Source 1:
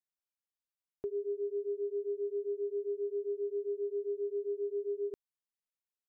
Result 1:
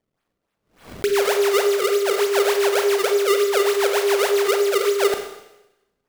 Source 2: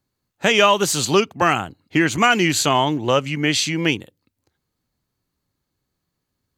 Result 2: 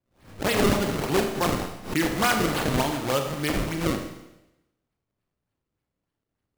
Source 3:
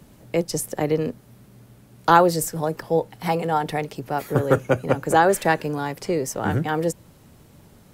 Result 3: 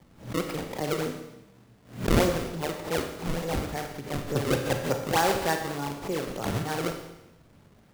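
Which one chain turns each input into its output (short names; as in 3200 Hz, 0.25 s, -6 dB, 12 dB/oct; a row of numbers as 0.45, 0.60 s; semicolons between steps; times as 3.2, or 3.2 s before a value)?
decimation with a swept rate 31×, swing 160% 3.4 Hz; Schroeder reverb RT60 0.93 s, combs from 28 ms, DRR 4.5 dB; backwards sustainer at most 140 dB/s; normalise peaks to -9 dBFS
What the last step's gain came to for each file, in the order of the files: +16.0, -7.5, -8.0 dB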